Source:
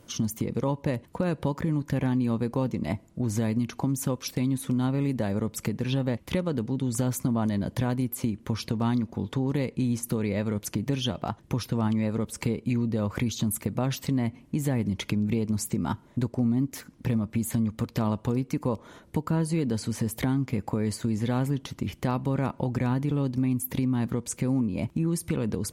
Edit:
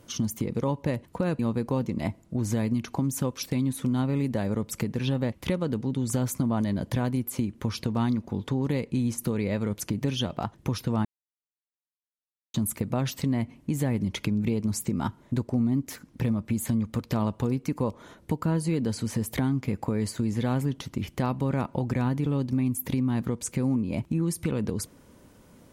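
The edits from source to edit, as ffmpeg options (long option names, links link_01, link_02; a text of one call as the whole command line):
ffmpeg -i in.wav -filter_complex "[0:a]asplit=4[link_01][link_02][link_03][link_04];[link_01]atrim=end=1.392[link_05];[link_02]atrim=start=2.238:end=11.9,asetpts=PTS-STARTPTS,afade=type=out:start_time=9.658:duration=0.004:curve=hsin[link_06];[link_03]atrim=start=11.9:end=13.39,asetpts=PTS-STARTPTS,volume=0[link_07];[link_04]atrim=start=13.39,asetpts=PTS-STARTPTS,afade=type=in:duration=0.004:curve=hsin[link_08];[link_06][link_07][link_08]concat=n=3:v=0:a=1[link_09];[link_05][link_09]acrossfade=duration=0.004:curve1=hsin:curve2=hsin" out.wav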